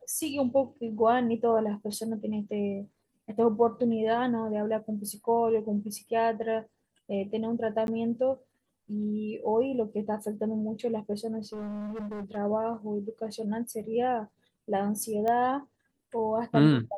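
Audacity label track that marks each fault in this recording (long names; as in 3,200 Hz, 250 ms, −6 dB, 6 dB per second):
7.870000	7.880000	drop-out 11 ms
11.530000	12.370000	clipping −34 dBFS
15.280000	15.280000	click −19 dBFS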